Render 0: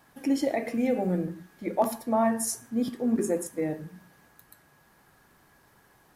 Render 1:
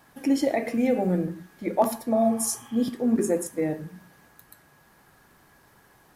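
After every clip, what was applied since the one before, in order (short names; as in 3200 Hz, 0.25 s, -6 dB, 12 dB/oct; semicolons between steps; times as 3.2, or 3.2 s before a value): spectral repair 2.15–2.84, 750–3400 Hz both; gain +3 dB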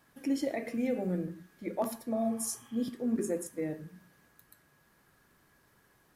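bell 810 Hz -6 dB 0.51 oct; gain -8 dB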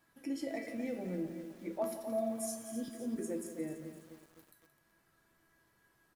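resonator 330 Hz, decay 0.34 s, harmonics all, mix 80%; echo 0.173 s -13 dB; lo-fi delay 0.257 s, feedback 55%, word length 10-bit, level -10 dB; gain +5 dB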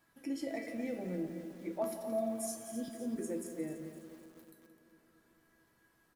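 darkening echo 0.223 s, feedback 71%, low-pass 1700 Hz, level -16 dB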